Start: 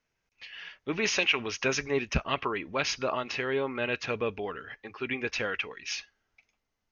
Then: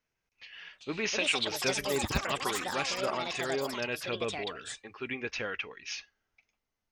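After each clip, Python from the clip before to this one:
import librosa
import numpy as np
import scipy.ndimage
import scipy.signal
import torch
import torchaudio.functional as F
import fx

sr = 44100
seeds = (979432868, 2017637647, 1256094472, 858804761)

y = fx.echo_pitch(x, sr, ms=514, semitones=6, count=3, db_per_echo=-3.0)
y = y * librosa.db_to_amplitude(-4.0)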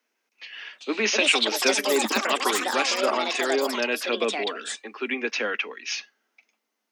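y = scipy.signal.sosfilt(scipy.signal.butter(16, 210.0, 'highpass', fs=sr, output='sos'), x)
y = y * librosa.db_to_amplitude(8.5)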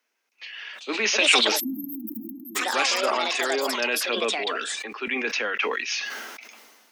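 y = fx.low_shelf(x, sr, hz=370.0, db=-9.5)
y = fx.spec_erase(y, sr, start_s=1.6, length_s=0.96, low_hz=330.0, high_hz=12000.0)
y = fx.sustainer(y, sr, db_per_s=34.0)
y = y * librosa.db_to_amplitude(1.0)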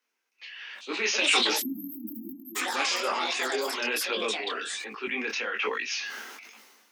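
y = fx.peak_eq(x, sr, hz=630.0, db=-7.0, octaves=0.27)
y = fx.detune_double(y, sr, cents=42)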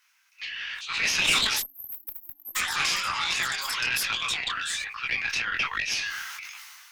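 y = scipy.signal.sosfilt(scipy.signal.butter(4, 1100.0, 'highpass', fs=sr, output='sos'), x)
y = fx.tube_stage(y, sr, drive_db=19.0, bias=0.65)
y = fx.band_squash(y, sr, depth_pct=40)
y = y * librosa.db_to_amplitude(6.5)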